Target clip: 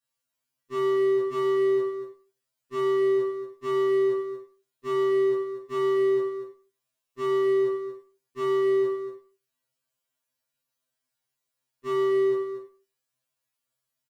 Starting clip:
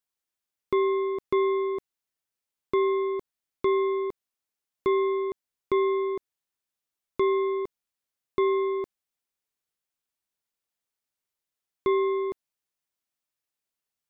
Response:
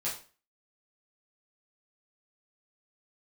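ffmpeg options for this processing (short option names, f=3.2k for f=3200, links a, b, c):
-filter_complex "[0:a]volume=31dB,asoftclip=hard,volume=-31dB,bandreject=f=840:w=12,aecho=1:1:235:0.355[a];[1:a]atrim=start_sample=2205[b];[a][b]afir=irnorm=-1:irlink=0,afftfilt=real='re*2.45*eq(mod(b,6),0)':imag='im*2.45*eq(mod(b,6),0)':win_size=2048:overlap=0.75,volume=2.5dB"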